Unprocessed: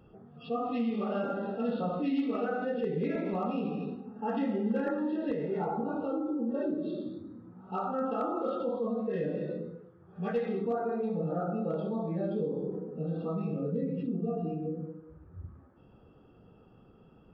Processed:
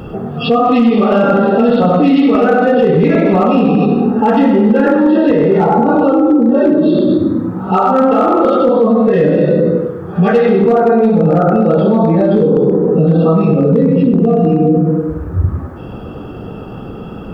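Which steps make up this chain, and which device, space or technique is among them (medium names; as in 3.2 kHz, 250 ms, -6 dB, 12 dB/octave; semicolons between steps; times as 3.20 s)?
tape echo 98 ms, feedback 45%, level -6 dB, low-pass 2.4 kHz; loud club master (compression 2:1, threshold -35 dBFS, peak gain reduction 6 dB; hard clipper -28 dBFS, distortion -28 dB; loudness maximiser +32.5 dB); trim -2.5 dB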